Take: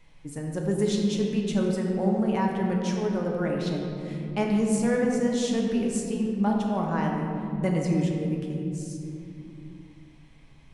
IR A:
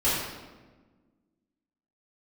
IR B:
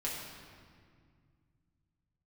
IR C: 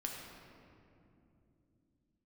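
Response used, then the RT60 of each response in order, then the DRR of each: C; 1.3, 2.0, 2.8 s; -13.0, -5.5, -1.0 dB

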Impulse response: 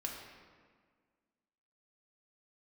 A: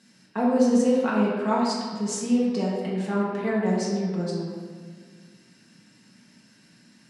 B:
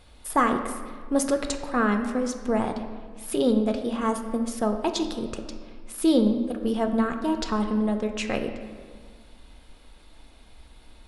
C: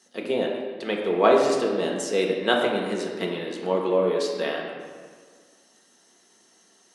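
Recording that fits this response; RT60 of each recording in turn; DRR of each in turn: C; 1.7, 1.7, 1.7 s; -7.5, 5.5, -1.0 dB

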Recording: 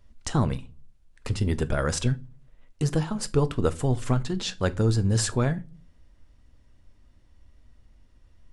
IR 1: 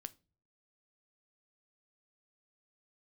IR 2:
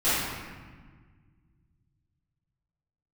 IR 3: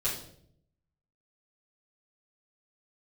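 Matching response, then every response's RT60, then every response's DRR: 1; not exponential, 1.5 s, 0.65 s; 12.5, -18.0, -9.5 dB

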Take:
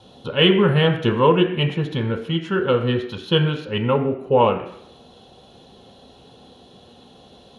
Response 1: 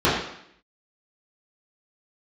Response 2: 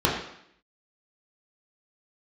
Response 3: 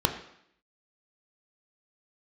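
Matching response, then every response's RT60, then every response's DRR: 3; 0.70, 0.70, 0.70 s; -11.5, -4.5, 4.5 dB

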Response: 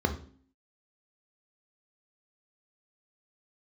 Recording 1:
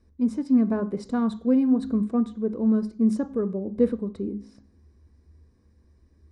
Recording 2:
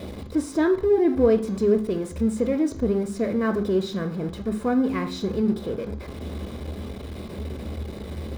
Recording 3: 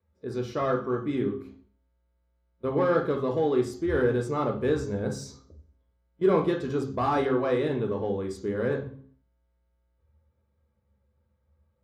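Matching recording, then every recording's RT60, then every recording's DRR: 2; 0.50, 0.50, 0.50 s; 11.0, 6.0, 1.5 dB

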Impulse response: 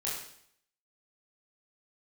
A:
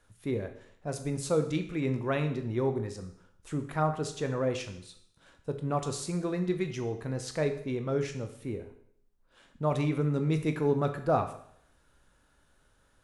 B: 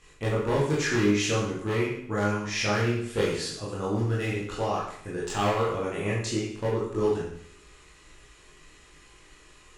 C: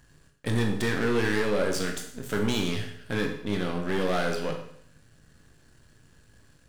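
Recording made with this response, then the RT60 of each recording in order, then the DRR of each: B; 0.65, 0.65, 0.65 s; 6.5, -6.5, 2.5 dB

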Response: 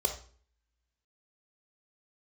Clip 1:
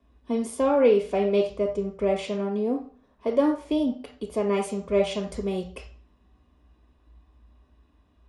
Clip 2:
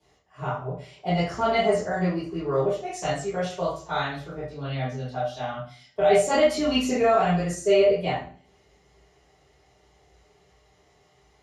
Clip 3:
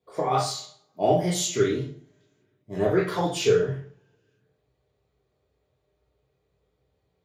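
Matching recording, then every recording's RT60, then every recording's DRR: 1; 0.45, 0.45, 0.45 s; 4.0, -12.0, -4.5 dB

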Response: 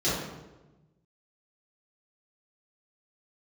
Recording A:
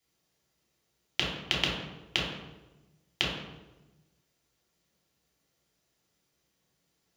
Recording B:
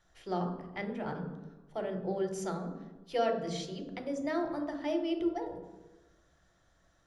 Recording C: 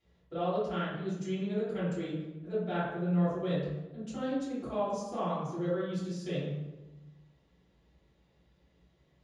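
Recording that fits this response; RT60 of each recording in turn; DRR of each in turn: C; 1.1, 1.1, 1.1 s; -4.5, 4.5, -11.0 dB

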